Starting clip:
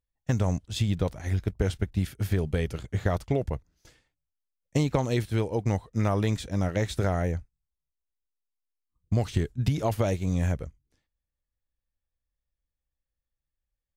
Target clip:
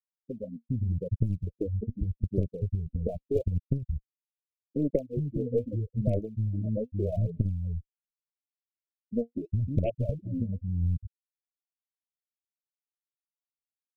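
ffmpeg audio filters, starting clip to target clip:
-filter_complex "[0:a]afftfilt=real='re*gte(hypot(re,im),0.2)':imag='im*gte(hypot(re,im),0.2)':win_size=1024:overlap=0.75,acrossover=split=220[a][b];[a]adelay=410[c];[c][b]amix=inputs=2:normalize=0,aphaser=in_gain=1:out_gain=1:delay=4.3:decay=0.73:speed=0.81:type=sinusoidal,aeval=exprs='0.708*(cos(1*acos(clip(val(0)/0.708,-1,1)))-cos(1*PI/2))+0.141*(cos(4*acos(clip(val(0)/0.708,-1,1)))-cos(4*PI/2))':c=same,acrossover=split=820[d][e];[d]acompressor=threshold=-24dB:ratio=16[f];[f][e]amix=inputs=2:normalize=0,asuperstop=centerf=1200:order=20:qfactor=0.75,volume=1dB"

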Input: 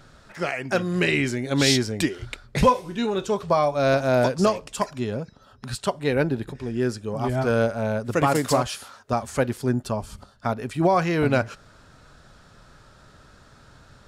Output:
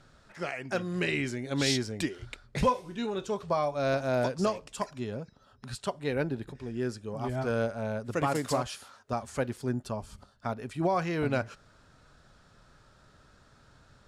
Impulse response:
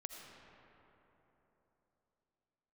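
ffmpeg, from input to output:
-af "lowpass=12k,volume=-8dB"

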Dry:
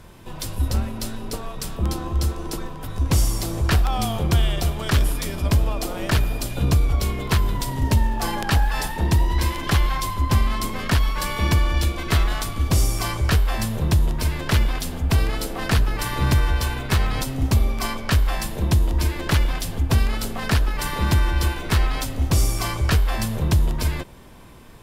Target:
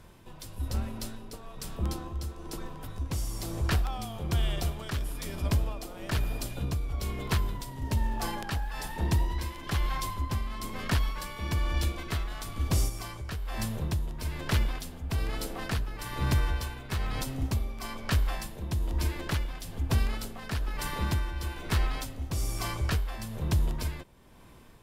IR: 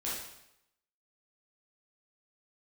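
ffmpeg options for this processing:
-filter_complex "[0:a]asplit=3[a][b][c];[a]afade=t=out:st=12.88:d=0.02[d];[b]acompressor=threshold=-21dB:ratio=6,afade=t=in:st=12.88:d=0.02,afade=t=out:st=13.56:d=0.02[e];[c]afade=t=in:st=13.56:d=0.02[f];[d][e][f]amix=inputs=3:normalize=0,tremolo=f=1.1:d=0.53,volume=-7.5dB"

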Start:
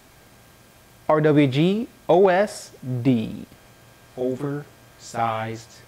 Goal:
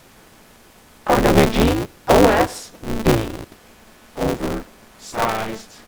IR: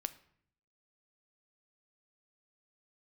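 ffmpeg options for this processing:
-filter_complex "[0:a]asplit=3[a][b][c];[b]asetrate=33038,aresample=44100,atempo=1.33484,volume=-7dB[d];[c]asetrate=66075,aresample=44100,atempo=0.66742,volume=-12dB[e];[a][d][e]amix=inputs=3:normalize=0,aeval=exprs='val(0)*sgn(sin(2*PI*110*n/s))':c=same,volume=2dB"

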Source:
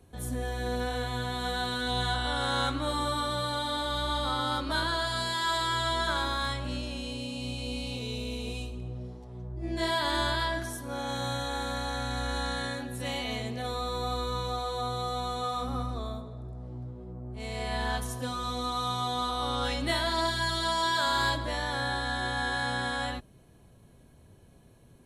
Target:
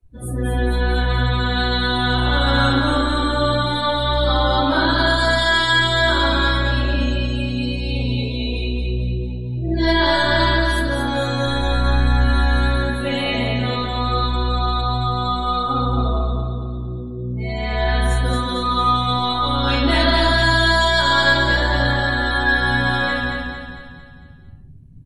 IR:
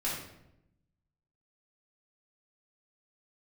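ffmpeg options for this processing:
-filter_complex "[0:a]asplit=2[a][b];[b]asoftclip=type=tanh:threshold=-29dB,volume=-6dB[c];[a][c]amix=inputs=2:normalize=0,asettb=1/sr,asplit=3[d][e][f];[d]atrim=end=11.454[g];[e]atrim=start=11.45:end=12.16,asetpts=PTS-STARTPTS,afade=t=in:d=0.004:c=qsin,afade=t=out:st=0.706:d=0.004:c=qsin,lowshelf=f=83:g=11[h];[f]atrim=start=12.156[i];[g][h]acrossfade=d=0.004:c1=hsin:c2=qsin[j];[j][i]acrossfade=d=0.004:c1=qsin:c2=hsin[k];[1:a]atrim=start_sample=2205,asetrate=43659,aresample=44100[l];[k][l]afir=irnorm=-1:irlink=0,afftdn=nr=27:nf=-35,aecho=1:1:226|452|678|904|1130|1356:0.596|0.28|0.132|0.0618|0.0291|0.0137,volume=3dB"

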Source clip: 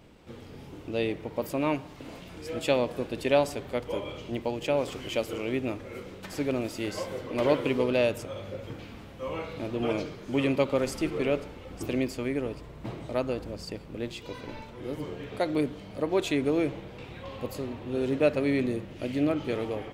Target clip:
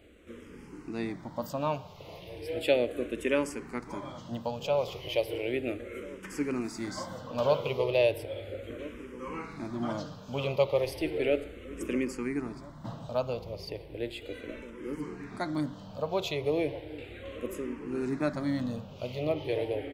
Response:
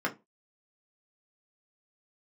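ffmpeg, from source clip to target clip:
-filter_complex "[0:a]asplit=2[a][b];[b]adelay=1341,volume=-16dB,highshelf=f=4k:g=-30.2[c];[a][c]amix=inputs=2:normalize=0,asplit=2[d][e];[1:a]atrim=start_sample=2205[f];[e][f]afir=irnorm=-1:irlink=0,volume=-23dB[g];[d][g]amix=inputs=2:normalize=0,asplit=2[h][i];[i]afreqshift=-0.35[j];[h][j]amix=inputs=2:normalize=1"

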